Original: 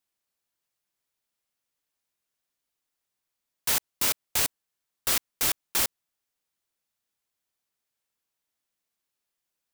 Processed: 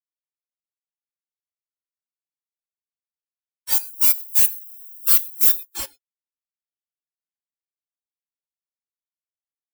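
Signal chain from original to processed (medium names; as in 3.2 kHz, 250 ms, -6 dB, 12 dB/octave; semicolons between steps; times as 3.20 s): 3.72–5.65 s: zero-crossing glitches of -25.5 dBFS; gated-style reverb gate 140 ms rising, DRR 7 dB; spectral contrast expander 4:1; trim +7.5 dB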